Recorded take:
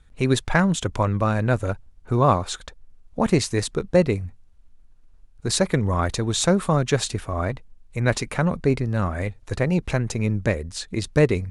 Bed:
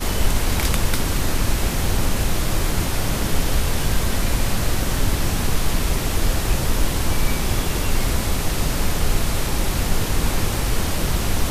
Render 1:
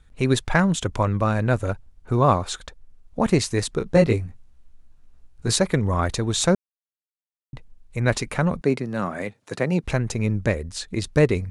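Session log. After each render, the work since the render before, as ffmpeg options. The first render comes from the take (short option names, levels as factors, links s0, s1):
-filter_complex "[0:a]asettb=1/sr,asplit=3[s0][s1][s2];[s0]atrim=end=3.794[s3];[s1]atrim=start=3.79:end=5.56,asetpts=PTS-STARTPTS,afade=t=in:d=0.004:c=qsin,afade=t=out:st=1.766:d=0.004:c=qsin,asplit=2[s4][s5];[s5]adelay=18,volume=0.794[s6];[s4][s6]amix=inputs=2:normalize=0,atrim=end_sample=78057[s7];[s2]atrim=start=5.556[s8];[s3][s7]acrossfade=d=0.004:c1=hsin:c2=qsin[s9];[s9][s8]acrossfade=d=0.004:c1=qsin:c2=hsin,asettb=1/sr,asplit=3[s10][s11][s12];[s10]atrim=end=8.614[s13];[s11]atrim=start=8.61:end=9.84,asetpts=PTS-STARTPTS,afade=t=in:d=0.004:c=qsin,afade=t=out:st=1.226:d=0.004:c=qsin,highpass=f=150:w=0.5412,highpass=f=150:w=1.3066[s14];[s12]atrim=start=9.836[s15];[s13][s14]acrossfade=d=0.004:c1=hsin:c2=qsin[s16];[s16][s15]acrossfade=d=0.004:c1=qsin:c2=hsin,asplit=3[s17][s18][s19];[s17]atrim=end=6.55,asetpts=PTS-STARTPTS,afade=t=out:st=6.546:d=0.004:c=hsin[s20];[s18]atrim=start=6.55:end=7.53,asetpts=PTS-STARTPTS,volume=0[s21];[s19]atrim=start=7.53,asetpts=PTS-STARTPTS,afade=t=in:d=0.004:c=hsin[s22];[s20][s21][s22]concat=n=3:v=0:a=1"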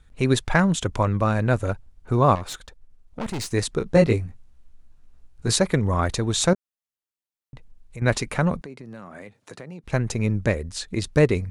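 -filter_complex "[0:a]asettb=1/sr,asplit=3[s0][s1][s2];[s0]atrim=end=2.354[s3];[s1]atrim=start=2.35:end=3.52,asetpts=PTS-STARTPTS,afade=t=in:d=0.004:c=qsin,afade=t=out:st=1.166:d=0.004:c=qsin,aeval=exprs='(tanh(20*val(0)+0.6)-tanh(0.6))/20':c=same[s4];[s2]atrim=start=3.516[s5];[s3][s4]acrossfade=d=0.004:c1=hsin:c2=qsin[s6];[s6][s5]acrossfade=d=0.004:c1=qsin:c2=hsin,asettb=1/sr,asplit=3[s7][s8][s9];[s7]atrim=end=6.534[s10];[s8]atrim=start=6.53:end=8.02,asetpts=PTS-STARTPTS,afade=t=in:d=0.004:c=qsin,afade=t=out:st=1.486:d=0.004:c=qsin,acompressor=threshold=0.01:ratio=2:attack=3.2:release=140:knee=1:detection=peak[s11];[s9]atrim=start=8.016[s12];[s10][s11]acrossfade=d=0.004:c1=hsin:c2=qsin[s13];[s13][s12]acrossfade=d=0.004:c1=qsin:c2=hsin,asettb=1/sr,asplit=3[s14][s15][s16];[s14]atrim=end=8.624[s17];[s15]atrim=start=8.62:end=9.93,asetpts=PTS-STARTPTS,afade=t=in:d=0.004:c=qsin,afade=t=out:st=1.306:d=0.004:c=qsin,acompressor=threshold=0.0141:ratio=5:attack=3.2:release=140:knee=1:detection=peak[s18];[s16]atrim=start=9.926[s19];[s17][s18]acrossfade=d=0.004:c1=hsin:c2=qsin[s20];[s20][s19]acrossfade=d=0.004:c1=qsin:c2=hsin"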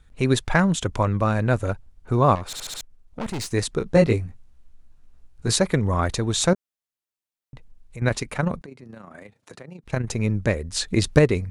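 -filter_complex "[0:a]asettb=1/sr,asplit=3[s0][s1][s2];[s0]atrim=end=8.084[s3];[s1]atrim=start=8.08:end=10.09,asetpts=PTS-STARTPTS,afade=t=in:d=0.004:c=qsin,afade=t=out:st=2.006:d=0.004:c=qsin,tremolo=f=28:d=0.571[s4];[s2]atrim=start=10.086[s5];[s3][s4]acrossfade=d=0.004:c1=hsin:c2=qsin[s6];[s6][s5]acrossfade=d=0.004:c1=qsin:c2=hsin,asettb=1/sr,asplit=3[s7][s8][s9];[s7]atrim=end=10.724[s10];[s8]atrim=start=10.72:end=11.19,asetpts=PTS-STARTPTS,afade=t=in:d=0.004:c=qsin,afade=t=out:st=0.466:d=0.004:c=qsin,acontrast=49[s11];[s9]atrim=start=11.186[s12];[s10][s11]acrossfade=d=0.004:c1=hsin:c2=qsin[s13];[s13][s12]acrossfade=d=0.004:c1=qsin:c2=hsin,asplit=6[s14][s15][s16][s17][s18][s19];[s14]atrim=end=2.532[s20];[s15]atrim=start=2.458:end=2.532[s21];[s16]atrim=start=2.458:end=2.532[s22];[s17]atrim=start=2.458:end=2.532[s23];[s18]atrim=start=2.458:end=2.532[s24];[s19]atrim=start=2.808[s25];[s20][s21]acrossfade=d=0.004:c1=hsin:c2=hsin[s26];[s26][s22]acrossfade=d=0.004:c1=hsin:c2=hsin[s27];[s27][s23]acrossfade=d=0.004:c1=hsin:c2=hsin[s28];[s28][s24]acrossfade=d=0.004:c1=hsin:c2=hsin[s29];[s29][s25]acrossfade=d=0.004:c1=hsin:c2=hsin"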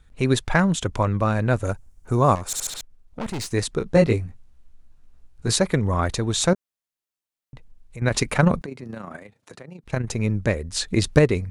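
-filter_complex "[0:a]asettb=1/sr,asplit=3[s0][s1][s2];[s0]atrim=end=1.644[s3];[s1]atrim=start=1.64:end=2.7,asetpts=PTS-STARTPTS,afade=t=in:d=0.004:c=qsin,afade=t=out:st=1.056:d=0.004:c=qsin,highshelf=f=5200:t=q:w=1.5:g=8[s4];[s2]atrim=start=2.696[s5];[s3][s4]acrossfade=d=0.004:c1=hsin:c2=qsin[s6];[s6][s5]acrossfade=d=0.004:c1=qsin:c2=hsin,asettb=1/sr,asplit=3[s7][s8][s9];[s7]atrim=end=8.144[s10];[s8]atrim=start=8.14:end=9.17,asetpts=PTS-STARTPTS,afade=t=in:d=0.004:c=qsin,afade=t=out:st=1.026:d=0.004:c=qsin,acontrast=82[s11];[s9]atrim=start=9.166[s12];[s10][s11]acrossfade=d=0.004:c1=hsin:c2=qsin[s13];[s13][s12]acrossfade=d=0.004:c1=qsin:c2=hsin"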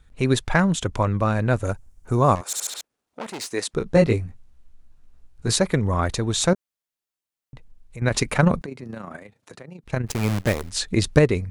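-filter_complex "[0:a]asettb=1/sr,asplit=3[s0][s1][s2];[s0]atrim=end=2.414[s3];[s1]atrim=start=2.41:end=3.74,asetpts=PTS-STARTPTS,afade=t=in:d=0.004:c=qsin,afade=t=out:st=1.326:d=0.004:c=qsin,highpass=330[s4];[s2]atrim=start=3.736[s5];[s3][s4]acrossfade=d=0.004:c1=hsin:c2=qsin[s6];[s6][s5]acrossfade=d=0.004:c1=qsin:c2=hsin,asplit=3[s7][s8][s9];[s7]afade=t=out:st=10.06:d=0.02[s10];[s8]acrusher=bits=5:dc=4:mix=0:aa=0.000001,afade=t=in:st=10.06:d=0.02,afade=t=out:st=10.69:d=0.02[s11];[s9]afade=t=in:st=10.69:d=0.02[s12];[s10][s11][s12]amix=inputs=3:normalize=0"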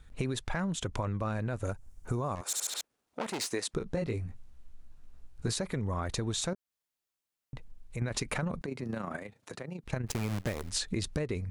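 -af "alimiter=limit=0.211:level=0:latency=1:release=63,acompressor=threshold=0.0316:ratio=6"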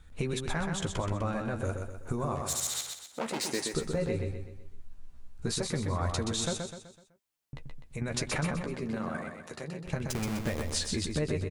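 -filter_complex "[0:a]asplit=2[s0][s1];[s1]adelay=13,volume=0.447[s2];[s0][s2]amix=inputs=2:normalize=0,aecho=1:1:126|252|378|504|630:0.562|0.242|0.104|0.0447|0.0192"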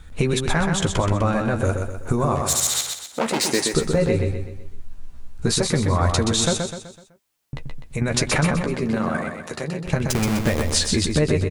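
-af "volume=3.76"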